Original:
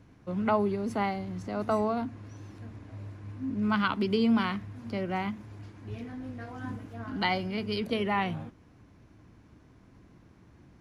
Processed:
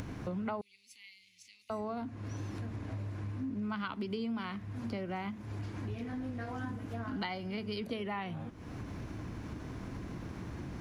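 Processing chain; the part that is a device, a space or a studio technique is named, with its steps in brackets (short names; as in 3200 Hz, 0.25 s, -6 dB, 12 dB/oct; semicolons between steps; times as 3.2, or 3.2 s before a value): upward and downward compression (upward compressor, threshold -39 dBFS; compressor 6:1, threshold -43 dBFS, peak gain reduction 20 dB); 0.61–1.7 elliptic high-pass 2300 Hz, stop band 40 dB; gain +7 dB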